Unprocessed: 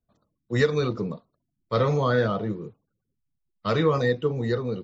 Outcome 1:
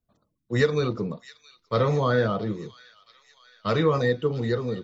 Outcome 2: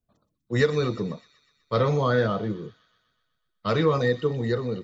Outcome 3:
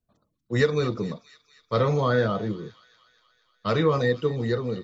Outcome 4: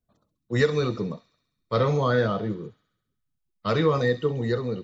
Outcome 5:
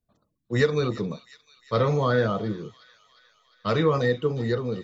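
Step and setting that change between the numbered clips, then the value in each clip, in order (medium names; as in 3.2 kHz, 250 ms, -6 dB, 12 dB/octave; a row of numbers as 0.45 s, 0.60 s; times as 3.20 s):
feedback echo behind a high-pass, time: 671 ms, 124 ms, 238 ms, 67 ms, 355 ms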